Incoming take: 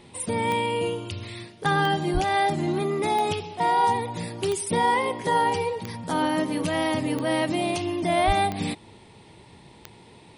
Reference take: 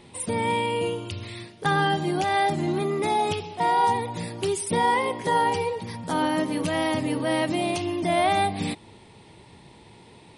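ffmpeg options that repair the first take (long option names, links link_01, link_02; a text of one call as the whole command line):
ffmpeg -i in.wav -filter_complex "[0:a]adeclick=threshold=4,asplit=3[link_01][link_02][link_03];[link_01]afade=type=out:start_time=2.13:duration=0.02[link_04];[link_02]highpass=frequency=140:width=0.5412,highpass=frequency=140:width=1.3066,afade=type=in:start_time=2.13:duration=0.02,afade=type=out:start_time=2.25:duration=0.02[link_05];[link_03]afade=type=in:start_time=2.25:duration=0.02[link_06];[link_04][link_05][link_06]amix=inputs=3:normalize=0,asplit=3[link_07][link_08][link_09];[link_07]afade=type=out:start_time=8.26:duration=0.02[link_10];[link_08]highpass=frequency=140:width=0.5412,highpass=frequency=140:width=1.3066,afade=type=in:start_time=8.26:duration=0.02,afade=type=out:start_time=8.38:duration=0.02[link_11];[link_09]afade=type=in:start_time=8.38:duration=0.02[link_12];[link_10][link_11][link_12]amix=inputs=3:normalize=0" out.wav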